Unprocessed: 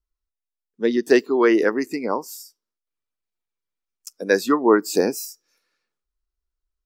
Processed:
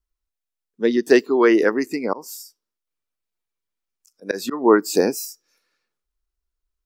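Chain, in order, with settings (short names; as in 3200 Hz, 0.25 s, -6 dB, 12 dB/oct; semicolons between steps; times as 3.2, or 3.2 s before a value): 2.13–4.67 auto swell 0.143 s; gain +1.5 dB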